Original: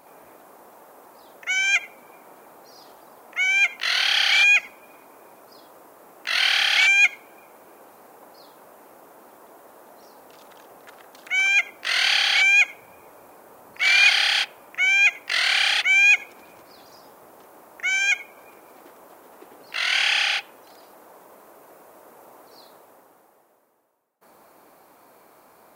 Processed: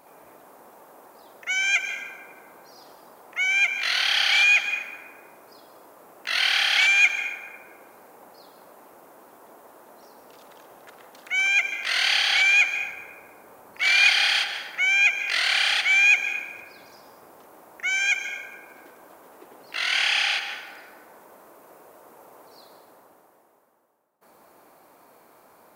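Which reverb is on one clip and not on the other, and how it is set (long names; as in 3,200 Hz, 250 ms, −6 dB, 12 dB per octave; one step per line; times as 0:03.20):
dense smooth reverb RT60 1.9 s, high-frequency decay 0.4×, pre-delay 120 ms, DRR 7 dB
level −2 dB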